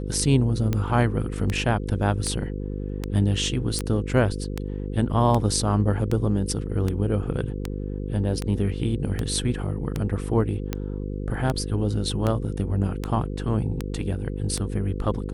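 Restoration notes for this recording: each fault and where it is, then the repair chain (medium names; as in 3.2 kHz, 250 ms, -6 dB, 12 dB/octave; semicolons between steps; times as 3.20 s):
buzz 50 Hz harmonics 10 -30 dBFS
tick 78 rpm -12 dBFS
3.79 s: pop -13 dBFS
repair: de-click; de-hum 50 Hz, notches 10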